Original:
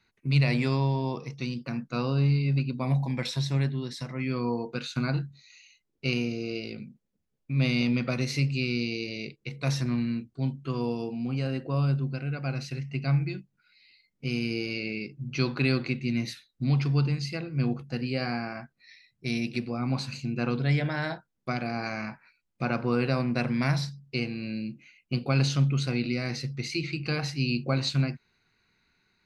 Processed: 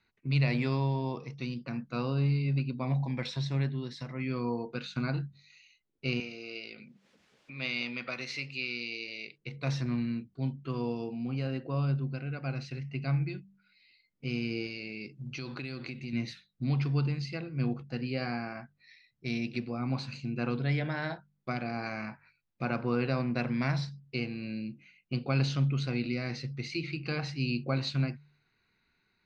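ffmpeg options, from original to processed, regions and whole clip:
ffmpeg -i in.wav -filter_complex "[0:a]asettb=1/sr,asplit=3[link_01][link_02][link_03];[link_01]atrim=end=6.204[link_04];[link_02]atrim=start=6.2:end=9.38,asetpts=PTS-STARTPTS,afade=type=in:duration=0.004:curve=qsin,afade=type=out:start_time=3.176:duration=0.004:curve=qsin,highpass=frequency=900:poles=1,equalizer=frequency=2100:width_type=o:width=1.8:gain=3,acompressor=mode=upward:threshold=-36dB:ratio=2.5:attack=3.2:release=140:knee=2.83:detection=peak[link_05];[link_03]atrim=start=9.376[link_06];[link_04][link_05]acrossfade=duration=0.004:curve1=hsin:curve2=qsin[link_07];[link_07][link_06]acrossfade=duration=0.004:curve1=qsin:curve2=hsin,asettb=1/sr,asplit=3[link_08][link_09][link_10];[link_08]atrim=end=14.664[link_11];[link_09]atrim=start=14.66:end=16.13,asetpts=PTS-STARTPTS,afade=type=in:duration=0.004:curve=qsin,afade=type=out:start_time=1.466:duration=0.004:curve=qsin,aemphasis=mode=production:type=50fm,acompressor=threshold=-31dB:ratio=6:attack=3.2:release=140:knee=1:detection=peak[link_12];[link_10]atrim=start=16.126[link_13];[link_11][link_12]acrossfade=duration=0.004:curve1=hsin:curve2=qsin[link_14];[link_14][link_13]acrossfade=duration=0.004:curve1=qsin:curve2=hsin,lowpass=4700,bandreject=frequency=48.74:width_type=h:width=4,bandreject=frequency=97.48:width_type=h:width=4,bandreject=frequency=146.22:width_type=h:width=4,bandreject=frequency=194.96:width_type=h:width=4,volume=-3.5dB" out.wav

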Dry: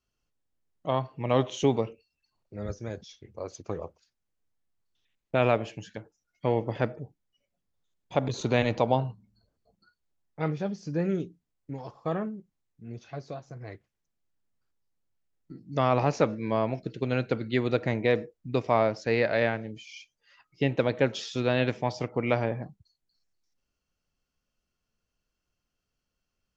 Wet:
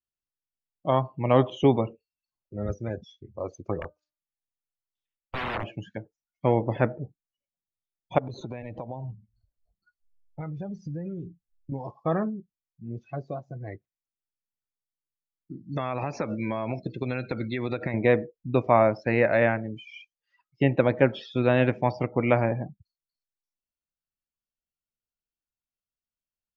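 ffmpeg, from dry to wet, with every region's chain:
ffmpeg -i in.wav -filter_complex "[0:a]asettb=1/sr,asplit=3[link_01][link_02][link_03];[link_01]atrim=end=3.794[link_04];[link_02]atrim=start=3.79:end=5.64,asetpts=PTS-STARTPTS,afade=type=in:duration=0.004:curve=qsin,afade=type=out:start_time=1.846:duration=0.004:curve=qsin,aeval=exprs='(mod(20*val(0)+1,2)-1)/20':channel_layout=same,equalizer=frequency=260:width=0.72:gain=-3,bandreject=frequency=302.7:width_type=h:width=4,bandreject=frequency=605.4:width_type=h:width=4,bandreject=frequency=908.1:width_type=h:width=4,bandreject=frequency=1210.8:width_type=h:width=4,bandreject=frequency=1513.5:width_type=h:width=4[link_05];[link_03]atrim=start=5.636[link_06];[link_04][link_05]acrossfade=duration=0.004:curve1=hsin:curve2=qsin[link_07];[link_07][link_06]acrossfade=duration=0.004:curve1=qsin:curve2=hsin,asettb=1/sr,asplit=3[link_08][link_09][link_10];[link_08]atrim=end=8.184[link_11];[link_09]atrim=start=8.18:end=11.72,asetpts=PTS-STARTPTS,afade=type=in:duration=0.004:curve=qsin,afade=type=out:start_time=3.536:duration=0.004:curve=qsin,asubboost=boost=5.5:cutoff=120,acompressor=threshold=-35dB:ratio=16:attack=3.2:release=140:knee=1:detection=peak[link_12];[link_10]atrim=start=11.716[link_13];[link_11][link_12]acrossfade=duration=0.004:curve1=hsin:curve2=qsin[link_14];[link_14][link_13]acrossfade=duration=0.004:curve1=qsin:curve2=hsin,asettb=1/sr,asplit=3[link_15][link_16][link_17];[link_15]atrim=end=15.634[link_18];[link_16]atrim=start=15.63:end=17.94,asetpts=PTS-STARTPTS,afade=type=in:duration=0.004:curve=qsin,afade=type=out:start_time=2.306:duration=0.004:curve=qsin,highshelf=frequency=2200:gain=10.5,acompressor=threshold=-27dB:ratio=20:attack=3.2:release=140:knee=1:detection=peak,asuperstop=centerf=3000:order=8:qfactor=7.1[link_19];[link_17]atrim=start=17.936[link_20];[link_18][link_19]acrossfade=duration=0.004:curve1=hsin:curve2=qsin[link_21];[link_21][link_20]acrossfade=duration=0.004:curve1=qsin:curve2=hsin,acrossover=split=2800[link_22][link_23];[link_23]acompressor=threshold=-49dB:ratio=4:attack=1:release=60[link_24];[link_22][link_24]amix=inputs=2:normalize=0,bandreject=frequency=450:width=12,afftdn=noise_reduction=23:noise_floor=-45,volume=4.5dB" out.wav

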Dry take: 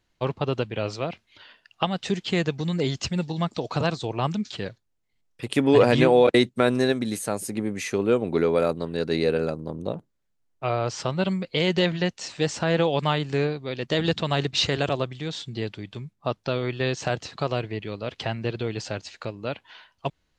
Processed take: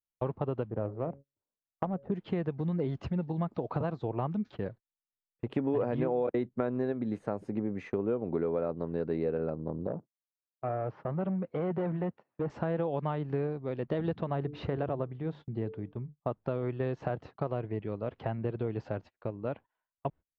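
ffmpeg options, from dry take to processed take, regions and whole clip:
ffmpeg -i in.wav -filter_complex "[0:a]asettb=1/sr,asplit=3[link_01][link_02][link_03];[link_01]atrim=end=0.704[link_04];[link_02]atrim=start=0.7:end=2.12,asetpts=PTS-STARTPTS,afade=type=in:duration=0.004:curve=qsin,afade=type=out:start_time=1.416:duration=0.004:curve=qsin,equalizer=frequency=2700:width_type=o:width=1.3:gain=-9,bandreject=frequency=139.1:width_type=h:width=4,bandreject=frequency=278.2:width_type=h:width=4,bandreject=frequency=417.3:width_type=h:width=4,bandreject=frequency=556.4:width_type=h:width=4,adynamicsmooth=sensitivity=2:basefreq=670[link_05];[link_03]atrim=start=2.116[link_06];[link_04][link_05]acrossfade=duration=0.004:curve1=hsin:curve2=qsin[link_07];[link_07][link_06]acrossfade=duration=0.004:curve1=qsin:curve2=hsin,asettb=1/sr,asplit=3[link_08][link_09][link_10];[link_08]atrim=end=9.874[link_11];[link_09]atrim=start=9.87:end=12.5,asetpts=PTS-STARTPTS,afade=type=in:duration=0.004:curve=qsin,afade=type=out:start_time=2.626:duration=0.004:curve=qsin,asoftclip=type=hard:threshold=-23.5dB,highpass=110,lowpass=2200[link_12];[link_10]atrim=start=12.496[link_13];[link_11][link_12]acrossfade=duration=0.004:curve1=hsin:curve2=qsin[link_14];[link_14][link_13]acrossfade=duration=0.004:curve1=qsin:curve2=hsin,asettb=1/sr,asplit=3[link_15][link_16][link_17];[link_15]atrim=end=14.244[link_18];[link_16]atrim=start=14.24:end=16.2,asetpts=PTS-STARTPTS,afade=type=in:duration=0.004:curve=qsin,afade=type=out:start_time=1.956:duration=0.004:curve=qsin,highshelf=frequency=2700:gain=-7.5,bandreject=frequency=147.3:width_type=h:width=4,bandreject=frequency=294.6:width_type=h:width=4,bandreject=frequency=441.9:width_type=h:width=4[link_19];[link_17]atrim=start=16.196[link_20];[link_18][link_19]acrossfade=duration=0.004:curve1=hsin:curve2=qsin[link_21];[link_21][link_20]acrossfade=duration=0.004:curve1=qsin:curve2=hsin,lowpass=1100,agate=range=-30dB:threshold=-42dB:ratio=16:detection=peak,acompressor=threshold=-26dB:ratio=4,volume=-2dB" out.wav

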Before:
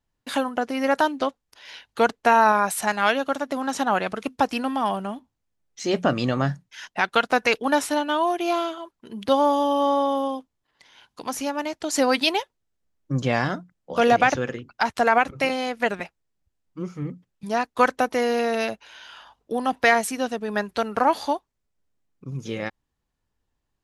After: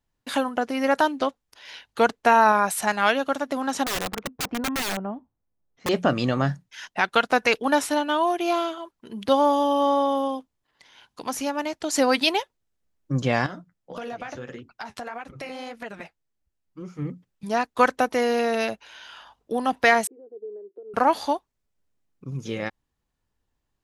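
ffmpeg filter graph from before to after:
ffmpeg -i in.wav -filter_complex "[0:a]asettb=1/sr,asplit=3[link_01][link_02][link_03];[link_01]atrim=end=3.844[link_04];[link_02]atrim=start=3.84:end=5.89,asetpts=PTS-STARTPTS,afade=type=in:duration=0.004:curve=qsin,afade=type=out:start_time=2.046:duration=0.004:curve=qsin,lowpass=1100,aeval=exprs='(mod(12.6*val(0)+1,2)-1)/12.6':channel_layout=same[link_05];[link_03]atrim=start=5.886[link_06];[link_04][link_05]acrossfade=duration=0.004:curve1=hsin:curve2=qsin[link_07];[link_07][link_06]acrossfade=duration=0.004:curve1=qsin:curve2=hsin,asettb=1/sr,asplit=3[link_08][link_09][link_10];[link_08]atrim=end=13.464[link_11];[link_09]atrim=start=13.46:end=16.99,asetpts=PTS-STARTPTS,afade=type=in:duration=0.004:curve=qsin,afade=type=out:start_time=3.526:duration=0.004:curve=qsin,flanger=delay=2.4:depth=9.3:regen=-39:speed=1.7:shape=triangular,acompressor=threshold=-32dB:ratio=5:attack=3.2:release=140:knee=1:detection=peak[link_12];[link_10]atrim=start=16.986[link_13];[link_11][link_12]acrossfade=duration=0.004:curve1=hsin:curve2=qsin[link_14];[link_14][link_13]acrossfade=duration=0.004:curve1=qsin:curve2=hsin,asettb=1/sr,asplit=3[link_15][link_16][link_17];[link_15]atrim=end=20.074[link_18];[link_16]atrim=start=20.07:end=20.94,asetpts=PTS-STARTPTS,afade=type=in:duration=0.004:curve=qsin,afade=type=out:start_time=0.866:duration=0.004:curve=qsin,acompressor=threshold=-27dB:ratio=10:attack=3.2:release=140:knee=1:detection=peak,asuperpass=centerf=400:order=4:qfactor=3.7[link_19];[link_17]atrim=start=20.936[link_20];[link_18][link_19]acrossfade=duration=0.004:curve1=hsin:curve2=qsin[link_21];[link_21][link_20]acrossfade=duration=0.004:curve1=qsin:curve2=hsin" out.wav

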